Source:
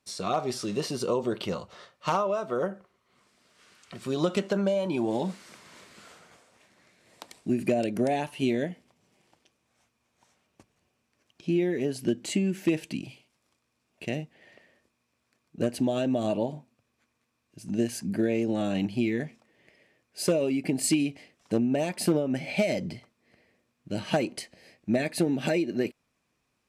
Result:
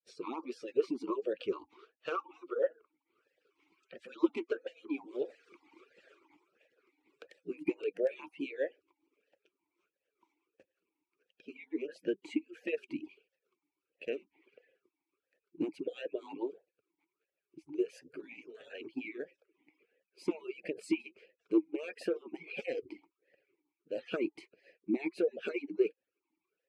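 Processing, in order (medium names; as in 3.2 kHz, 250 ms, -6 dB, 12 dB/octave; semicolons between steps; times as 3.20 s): harmonic-percussive separation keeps percussive; talking filter e-u 1.5 Hz; trim +6 dB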